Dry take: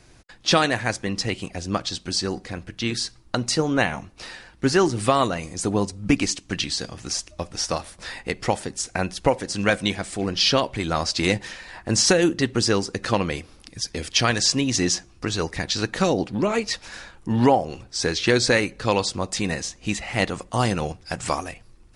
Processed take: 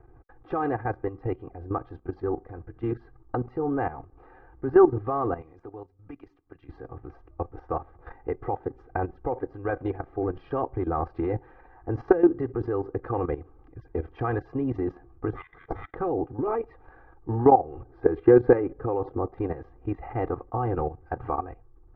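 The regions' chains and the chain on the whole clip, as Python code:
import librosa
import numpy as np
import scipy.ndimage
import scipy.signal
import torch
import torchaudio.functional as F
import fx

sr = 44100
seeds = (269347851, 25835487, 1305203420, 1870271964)

y = fx.chain(x, sr, fx.pre_emphasis(coefficient=0.9),
    fx.band_squash(depth_pct=70), at=(5.41, 6.69))
y = fx.chain(y, sr, fx.highpass(hz=680.0, slope=6),
    fx.freq_invert(carrier_hz=3900),
    fx.resample_bad(factor=8, down='none', up='zero_stuff'), at=(15.33, 15.95))
y = fx.chain(y, sr, fx.lowpass(hz=3800.0, slope=12),
    fx.peak_eq(hz=340.0, db=5.0, octaves=2.0), at=(17.83, 19.38))
y = scipy.signal.sosfilt(scipy.signal.butter(4, 1200.0, 'lowpass', fs=sr, output='sos'), y)
y = y + 0.93 * np.pad(y, (int(2.5 * sr / 1000.0), 0))[:len(y)]
y = fx.level_steps(y, sr, step_db=13)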